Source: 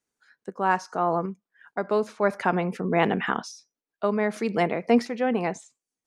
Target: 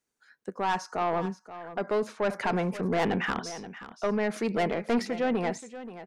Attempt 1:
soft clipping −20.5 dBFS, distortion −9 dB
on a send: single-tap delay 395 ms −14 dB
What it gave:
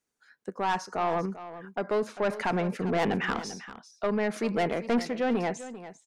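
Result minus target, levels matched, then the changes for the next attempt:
echo 134 ms early
change: single-tap delay 529 ms −14 dB

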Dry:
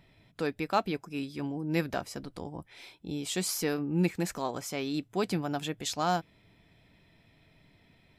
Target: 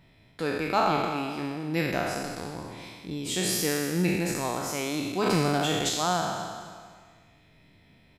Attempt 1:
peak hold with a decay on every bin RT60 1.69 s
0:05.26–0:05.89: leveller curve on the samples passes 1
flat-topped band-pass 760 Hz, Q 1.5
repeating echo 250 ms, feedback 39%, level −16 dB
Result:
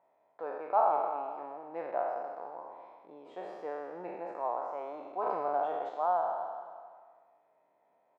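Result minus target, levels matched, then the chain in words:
1,000 Hz band +5.5 dB
peak hold with a decay on every bin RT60 1.69 s
0:05.26–0:05.89: leveller curve on the samples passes 1
repeating echo 250 ms, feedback 39%, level −16 dB

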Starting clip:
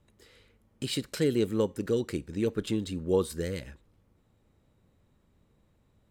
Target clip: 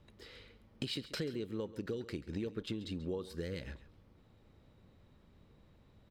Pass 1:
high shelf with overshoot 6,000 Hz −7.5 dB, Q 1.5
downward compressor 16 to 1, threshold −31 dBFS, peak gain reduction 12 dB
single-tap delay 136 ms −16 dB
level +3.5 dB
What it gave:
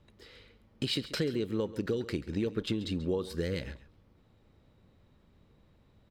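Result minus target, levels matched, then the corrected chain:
downward compressor: peak gain reduction −7.5 dB
high shelf with overshoot 6,000 Hz −7.5 dB, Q 1.5
downward compressor 16 to 1, threshold −39 dBFS, peak gain reduction 19.5 dB
single-tap delay 136 ms −16 dB
level +3.5 dB

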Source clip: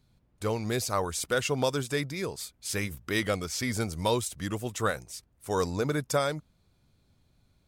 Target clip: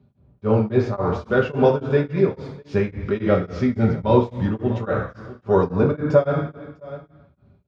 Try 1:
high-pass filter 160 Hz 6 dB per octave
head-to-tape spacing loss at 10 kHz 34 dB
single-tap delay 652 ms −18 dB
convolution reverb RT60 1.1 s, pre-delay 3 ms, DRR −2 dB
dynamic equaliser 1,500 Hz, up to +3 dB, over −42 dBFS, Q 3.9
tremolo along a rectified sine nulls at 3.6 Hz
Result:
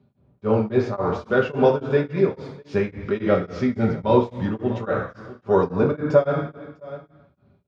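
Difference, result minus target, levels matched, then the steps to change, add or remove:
125 Hz band −3.0 dB
remove: high-pass filter 160 Hz 6 dB per octave

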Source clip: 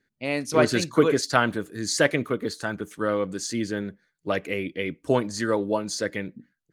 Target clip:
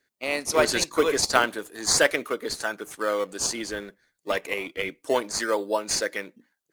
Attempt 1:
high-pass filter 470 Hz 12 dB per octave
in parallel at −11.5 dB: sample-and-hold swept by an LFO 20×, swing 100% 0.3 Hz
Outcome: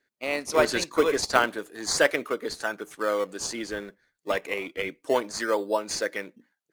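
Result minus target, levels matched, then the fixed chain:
8,000 Hz band −4.5 dB
high-pass filter 470 Hz 12 dB per octave
high-shelf EQ 4,300 Hz +8.5 dB
in parallel at −11.5 dB: sample-and-hold swept by an LFO 20×, swing 100% 0.3 Hz

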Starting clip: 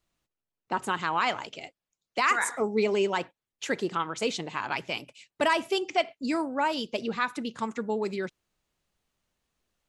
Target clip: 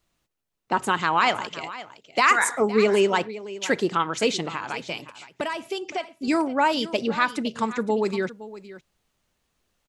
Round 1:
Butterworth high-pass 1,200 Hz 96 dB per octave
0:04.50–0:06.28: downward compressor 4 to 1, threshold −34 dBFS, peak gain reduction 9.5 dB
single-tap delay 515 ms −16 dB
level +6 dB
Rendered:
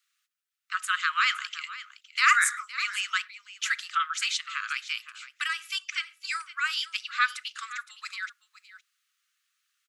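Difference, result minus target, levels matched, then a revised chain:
1,000 Hz band −2.5 dB
0:04.50–0:06.28: downward compressor 4 to 1, threshold −34 dBFS, peak gain reduction 12.5 dB
single-tap delay 515 ms −16 dB
level +6 dB

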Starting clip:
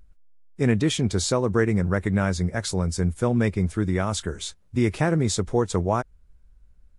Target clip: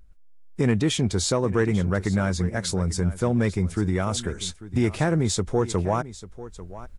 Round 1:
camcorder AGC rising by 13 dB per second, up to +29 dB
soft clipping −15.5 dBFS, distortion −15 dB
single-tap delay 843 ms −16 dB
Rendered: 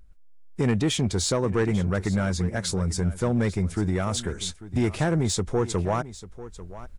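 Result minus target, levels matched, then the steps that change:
soft clipping: distortion +9 dB
change: soft clipping −9.5 dBFS, distortion −24 dB

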